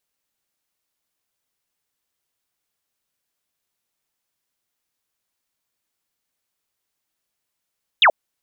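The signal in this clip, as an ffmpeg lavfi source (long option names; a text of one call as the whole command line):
ffmpeg -f lavfi -i "aevalsrc='0.355*clip(t/0.002,0,1)*clip((0.08-t)/0.002,0,1)*sin(2*PI*3900*0.08/log(540/3900)*(exp(log(540/3900)*t/0.08)-1))':duration=0.08:sample_rate=44100" out.wav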